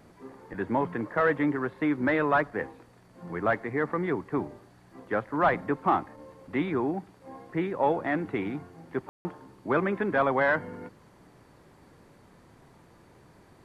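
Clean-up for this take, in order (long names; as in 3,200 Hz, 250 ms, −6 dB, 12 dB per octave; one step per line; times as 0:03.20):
ambience match 0:09.09–0:09.25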